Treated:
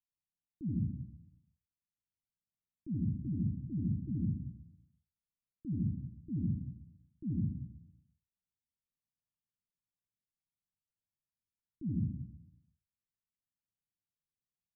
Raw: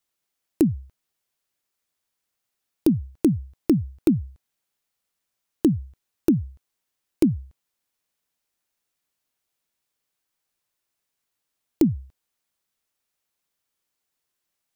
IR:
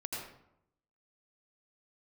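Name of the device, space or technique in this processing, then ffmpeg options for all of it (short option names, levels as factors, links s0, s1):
club heard from the street: -filter_complex "[0:a]alimiter=limit=0.141:level=0:latency=1,lowpass=f=210:w=0.5412,lowpass=f=210:w=1.3066[s0];[1:a]atrim=start_sample=2205[s1];[s0][s1]afir=irnorm=-1:irlink=0,volume=0.447"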